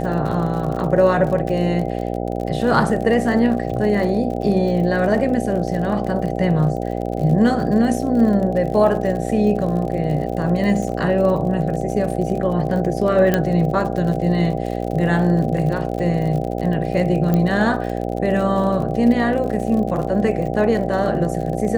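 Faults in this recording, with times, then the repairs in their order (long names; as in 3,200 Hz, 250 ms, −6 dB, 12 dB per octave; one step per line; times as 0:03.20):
mains buzz 60 Hz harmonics 13 −24 dBFS
surface crackle 48 per second −27 dBFS
0:13.34: click −4 dBFS
0:17.34: click −8 dBFS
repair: click removal
hum removal 60 Hz, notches 13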